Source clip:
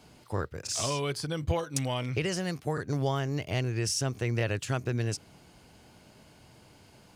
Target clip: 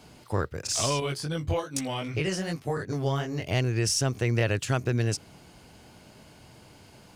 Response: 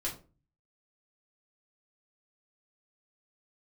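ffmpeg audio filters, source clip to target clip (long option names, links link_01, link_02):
-filter_complex "[0:a]asettb=1/sr,asplit=3[link_01][link_02][link_03];[link_01]atrim=end=1.004[link_04];[link_02]atrim=start=1:end=3.47,asetpts=PTS-STARTPTS,afade=type=in:duration=0.004:curve=qsin,afade=type=out:start_time=2.466:duration=0.004:curve=qsin,flanger=delay=18:depth=3.8:speed=2.6[link_05];[link_03]atrim=start=3.466[link_06];[link_04][link_05]acrossfade=duration=0.004:curve1=hsin:curve2=qsin[link_07];[link_07][link_06]acrossfade=duration=0.004:curve1=qsin:curve2=hsin,aeval=exprs='0.15*(cos(1*acos(clip(val(0)/0.15,-1,1)))-cos(1*PI/2))+0.0015*(cos(6*acos(clip(val(0)/0.15,-1,1)))-cos(6*PI/2))':channel_layout=same,volume=4dB"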